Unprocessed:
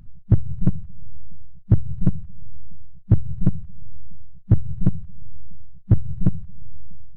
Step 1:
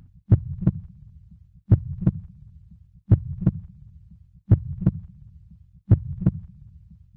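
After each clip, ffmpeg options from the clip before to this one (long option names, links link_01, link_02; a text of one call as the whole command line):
ffmpeg -i in.wav -af "highpass=51" out.wav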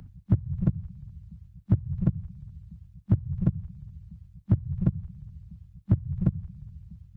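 ffmpeg -i in.wav -filter_complex "[0:a]acrossover=split=140|400[link_01][link_02][link_03];[link_01]acompressor=threshold=-26dB:ratio=4[link_04];[link_02]acompressor=threshold=-33dB:ratio=4[link_05];[link_03]acompressor=threshold=-48dB:ratio=4[link_06];[link_04][link_05][link_06]amix=inputs=3:normalize=0,volume=3.5dB" out.wav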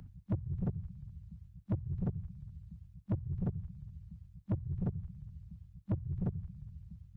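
ffmpeg -i in.wav -af "asoftclip=type=tanh:threshold=-23dB,volume=-4.5dB" out.wav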